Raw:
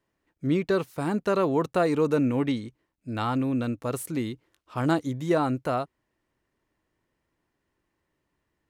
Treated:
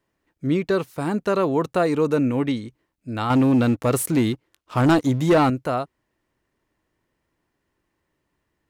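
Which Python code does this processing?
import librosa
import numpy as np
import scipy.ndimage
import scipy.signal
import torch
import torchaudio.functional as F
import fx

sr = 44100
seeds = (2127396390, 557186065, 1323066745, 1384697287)

y = fx.leveller(x, sr, passes=2, at=(3.3, 5.5))
y = F.gain(torch.from_numpy(y), 3.0).numpy()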